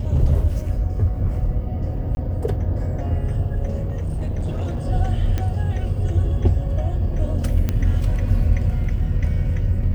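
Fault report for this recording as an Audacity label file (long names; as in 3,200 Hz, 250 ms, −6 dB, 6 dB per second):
2.150000	2.170000	drop-out
3.820000	4.880000	clipping −20 dBFS
5.380000	5.380000	click −12 dBFS
7.690000	7.690000	click −9 dBFS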